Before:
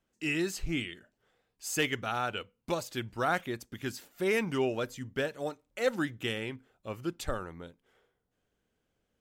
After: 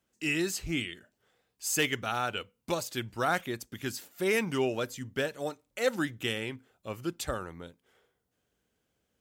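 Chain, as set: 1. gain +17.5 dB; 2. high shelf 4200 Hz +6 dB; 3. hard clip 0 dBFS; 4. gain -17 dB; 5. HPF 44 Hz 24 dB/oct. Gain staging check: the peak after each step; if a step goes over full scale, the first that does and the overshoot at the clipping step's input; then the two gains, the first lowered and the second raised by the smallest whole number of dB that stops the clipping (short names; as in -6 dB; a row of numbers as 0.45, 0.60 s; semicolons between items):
+2.0, +3.0, 0.0, -17.0, -15.5 dBFS; step 1, 3.0 dB; step 1 +14.5 dB, step 4 -14 dB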